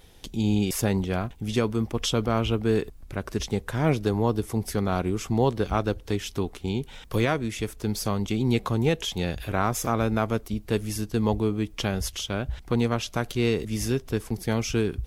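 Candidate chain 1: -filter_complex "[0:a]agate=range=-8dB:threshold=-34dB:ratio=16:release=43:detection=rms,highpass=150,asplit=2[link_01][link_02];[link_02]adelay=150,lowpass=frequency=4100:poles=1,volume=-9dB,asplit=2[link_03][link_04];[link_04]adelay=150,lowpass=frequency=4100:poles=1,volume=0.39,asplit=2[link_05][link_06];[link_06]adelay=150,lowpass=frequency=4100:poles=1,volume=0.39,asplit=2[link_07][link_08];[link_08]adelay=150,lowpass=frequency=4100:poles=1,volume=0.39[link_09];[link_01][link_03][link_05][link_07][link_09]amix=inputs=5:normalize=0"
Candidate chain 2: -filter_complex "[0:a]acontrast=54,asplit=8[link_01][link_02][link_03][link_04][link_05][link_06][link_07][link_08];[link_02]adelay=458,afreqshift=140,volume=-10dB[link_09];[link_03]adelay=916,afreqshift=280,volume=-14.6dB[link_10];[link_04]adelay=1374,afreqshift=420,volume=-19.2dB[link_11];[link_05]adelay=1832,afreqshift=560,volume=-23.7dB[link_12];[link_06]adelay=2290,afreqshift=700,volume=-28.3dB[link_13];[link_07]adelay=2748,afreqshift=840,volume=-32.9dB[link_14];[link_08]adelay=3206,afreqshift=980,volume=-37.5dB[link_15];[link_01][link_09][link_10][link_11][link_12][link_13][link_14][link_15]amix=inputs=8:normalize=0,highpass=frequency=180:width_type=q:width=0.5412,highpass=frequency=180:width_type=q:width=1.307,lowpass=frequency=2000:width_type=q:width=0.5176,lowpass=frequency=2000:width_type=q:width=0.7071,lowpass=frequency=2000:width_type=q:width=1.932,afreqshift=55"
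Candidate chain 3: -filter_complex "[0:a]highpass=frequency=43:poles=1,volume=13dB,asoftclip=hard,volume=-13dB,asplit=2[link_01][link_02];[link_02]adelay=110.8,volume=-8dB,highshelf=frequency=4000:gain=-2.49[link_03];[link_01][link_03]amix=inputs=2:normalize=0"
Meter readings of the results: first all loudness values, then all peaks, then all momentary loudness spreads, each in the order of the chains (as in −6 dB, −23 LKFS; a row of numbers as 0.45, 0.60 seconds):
−27.5, −22.5, −26.5 LKFS; −9.0, −6.5, −10.5 dBFS; 6, 5, 6 LU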